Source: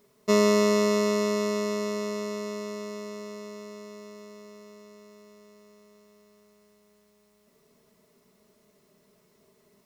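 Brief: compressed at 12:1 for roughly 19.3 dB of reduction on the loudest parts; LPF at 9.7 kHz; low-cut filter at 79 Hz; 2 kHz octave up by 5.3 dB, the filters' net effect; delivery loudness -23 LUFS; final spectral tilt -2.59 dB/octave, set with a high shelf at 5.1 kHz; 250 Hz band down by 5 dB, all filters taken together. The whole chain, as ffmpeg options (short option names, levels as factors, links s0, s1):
-af "highpass=79,lowpass=9700,equalizer=f=250:t=o:g=-6.5,equalizer=f=2000:t=o:g=4.5,highshelf=f=5100:g=9,acompressor=threshold=0.0141:ratio=12,volume=10"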